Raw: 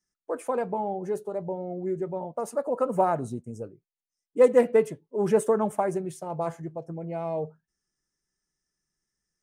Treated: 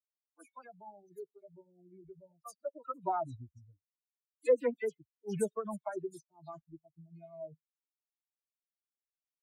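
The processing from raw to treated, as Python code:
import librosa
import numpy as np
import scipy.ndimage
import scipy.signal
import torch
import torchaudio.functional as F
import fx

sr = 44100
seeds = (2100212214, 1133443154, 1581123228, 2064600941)

y = fx.bin_expand(x, sr, power=3.0)
y = fx.dispersion(y, sr, late='lows', ms=85.0, hz=2800.0)
y = fx.comb_cascade(y, sr, direction='falling', hz=0.62)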